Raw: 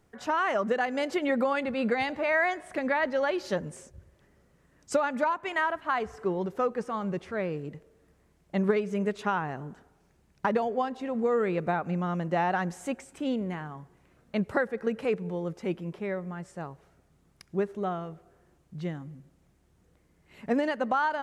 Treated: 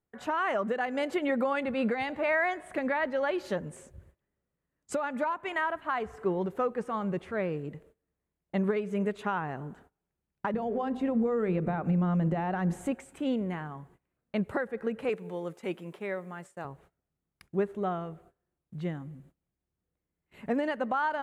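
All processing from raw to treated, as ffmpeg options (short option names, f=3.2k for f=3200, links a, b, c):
-filter_complex "[0:a]asettb=1/sr,asplit=3[a][b][c];[a]atrim=end=10.544[d];[b]atrim=start=10.54:end=12.92,asetpts=PTS-STARTPTS,afade=t=in:d=0.004:c=qsin,afade=t=out:st=2.376:d=0.004:c=qsin,acompressor=threshold=-30dB:ratio=5:attack=3.2:release=140:knee=1:detection=peak,lowshelf=f=380:g=11,bandreject=f=50:t=h:w=6,bandreject=f=100:t=h:w=6,bandreject=f=150:t=h:w=6,bandreject=f=200:t=h:w=6,bandreject=f=250:t=h:w=6,bandreject=f=300:t=h:w=6,bandreject=f=350:t=h:w=6,bandreject=f=400:t=h:w=6,bandreject=f=450:t=h:w=6,bandreject=f=500:t=h:w=6[e];[c]atrim=start=12.916[f];[d][e]acrossfade=d=0.004:c1=hsin:c2=qsin[g];[g][f]acrossfade=d=0.004:c1=qsin:c2=hsin,asettb=1/sr,asplit=3[h][i][j];[h]atrim=end=15.094[k];[i]atrim=start=15.09:end=16.65,asetpts=PTS-STARTPTS,afade=t=in:d=0.004:c=qsin,afade=t=out:st=1.556:d=0.004:c=qsin,agate=range=-33dB:threshold=-46dB:ratio=3:release=100:detection=peak,highpass=f=370:p=1,highshelf=f=3.9k:g=7.5[l];[j]atrim=start=16.646[m];[k][l]acrossfade=d=0.004:c1=hsin:c2=qsin[n];[n][m]acrossfade=d=0.004:c1=qsin:c2=hsin,alimiter=limit=-19dB:level=0:latency=1:release=335,agate=range=-21dB:threshold=-56dB:ratio=16:detection=peak,equalizer=f=5.4k:w=1.9:g=-9.5"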